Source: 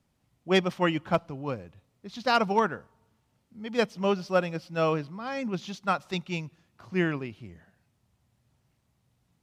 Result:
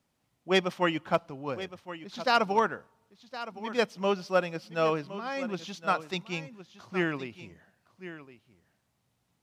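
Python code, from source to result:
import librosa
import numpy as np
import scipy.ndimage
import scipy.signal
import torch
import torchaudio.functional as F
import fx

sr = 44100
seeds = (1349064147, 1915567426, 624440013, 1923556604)

y = fx.low_shelf(x, sr, hz=160.0, db=-11.5)
y = y + 10.0 ** (-14.0 / 20.0) * np.pad(y, (int(1065 * sr / 1000.0), 0))[:len(y)]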